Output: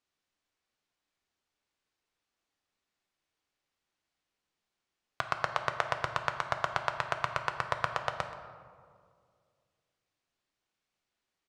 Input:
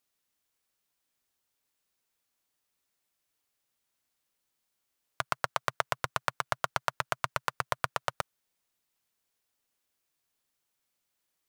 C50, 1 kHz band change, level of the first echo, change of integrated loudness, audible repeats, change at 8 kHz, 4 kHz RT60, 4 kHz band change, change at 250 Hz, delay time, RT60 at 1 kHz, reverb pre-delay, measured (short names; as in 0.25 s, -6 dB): 8.0 dB, +0.5 dB, -16.5 dB, 0.0 dB, 1, -7.5 dB, 0.95 s, -1.5 dB, +0.5 dB, 0.128 s, 1.9 s, 3 ms